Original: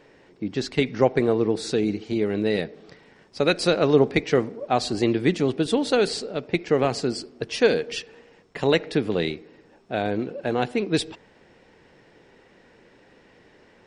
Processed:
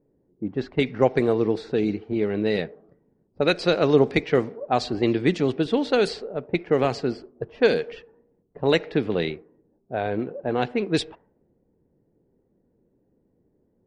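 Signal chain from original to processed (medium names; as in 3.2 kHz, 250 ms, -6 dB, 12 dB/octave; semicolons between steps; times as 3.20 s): level-controlled noise filter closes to 310 Hz, open at -15.5 dBFS; spectral noise reduction 7 dB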